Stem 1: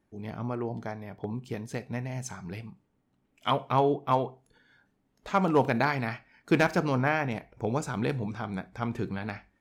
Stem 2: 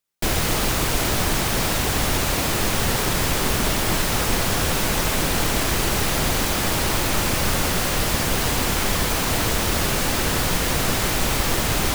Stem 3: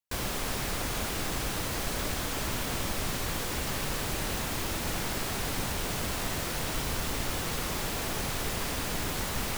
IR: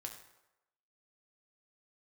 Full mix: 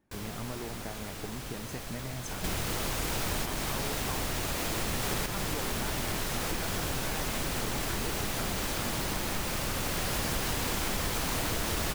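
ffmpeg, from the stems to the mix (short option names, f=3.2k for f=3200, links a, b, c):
-filter_complex "[0:a]acompressor=threshold=-36dB:ratio=6,volume=-0.5dB,asplit=2[a][b];[1:a]adelay=2050,volume=-2dB,asplit=2[c][d];[d]volume=-7dB[e];[2:a]volume=-9dB[f];[b]apad=whole_len=617219[g];[c][g]sidechaincompress=threshold=-56dB:ratio=8:attack=16:release=704[h];[e]aecho=0:1:168:1[i];[a][h][f][i]amix=inputs=4:normalize=0,acompressor=threshold=-28dB:ratio=6"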